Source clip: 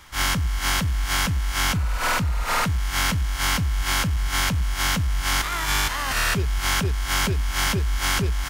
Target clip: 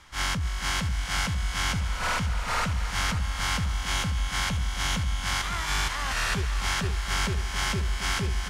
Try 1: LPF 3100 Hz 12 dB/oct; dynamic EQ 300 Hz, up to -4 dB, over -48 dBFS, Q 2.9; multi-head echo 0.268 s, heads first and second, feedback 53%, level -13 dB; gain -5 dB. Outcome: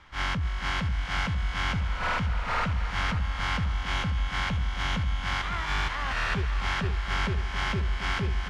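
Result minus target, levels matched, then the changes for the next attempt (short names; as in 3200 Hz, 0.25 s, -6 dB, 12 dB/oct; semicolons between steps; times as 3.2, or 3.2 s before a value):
8000 Hz band -12.5 dB
change: LPF 9000 Hz 12 dB/oct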